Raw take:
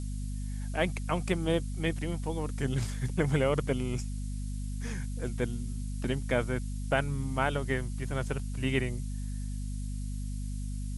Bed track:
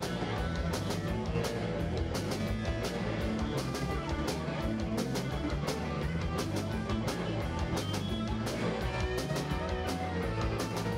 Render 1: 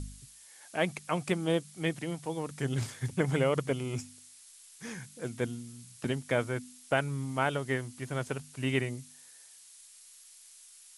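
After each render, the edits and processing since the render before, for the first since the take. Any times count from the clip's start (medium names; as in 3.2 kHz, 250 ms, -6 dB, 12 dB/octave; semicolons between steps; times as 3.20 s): de-hum 50 Hz, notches 5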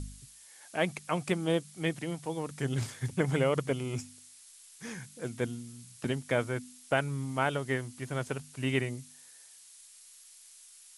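no audible change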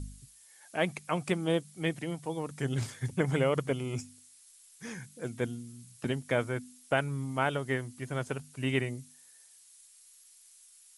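noise reduction 6 dB, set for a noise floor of -55 dBFS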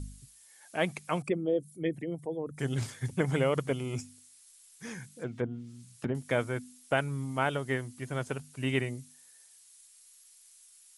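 1.22–2.59 s: resonances exaggerated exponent 2; 5.07–6.15 s: low-pass that closes with the level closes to 1 kHz, closed at -28.5 dBFS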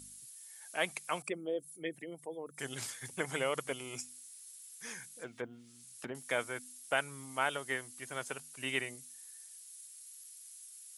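high-pass 1 kHz 6 dB/octave; treble shelf 9.7 kHz +11.5 dB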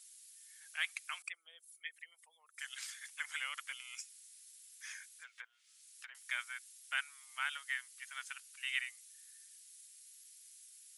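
high-pass 1.5 kHz 24 dB/octave; treble shelf 8.5 kHz -10.5 dB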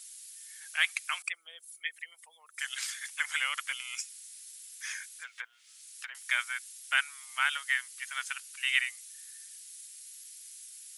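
trim +9.5 dB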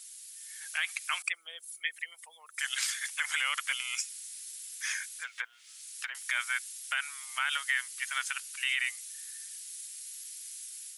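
level rider gain up to 4.5 dB; peak limiter -18.5 dBFS, peak gain reduction 11.5 dB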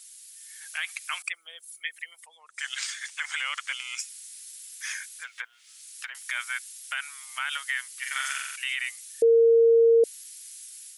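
2.26–3.99 s: low-pass 8.4 kHz 24 dB/octave; 7.99–8.56 s: flutter echo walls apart 7.5 m, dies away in 1.1 s; 9.22–10.04 s: bleep 460 Hz -14.5 dBFS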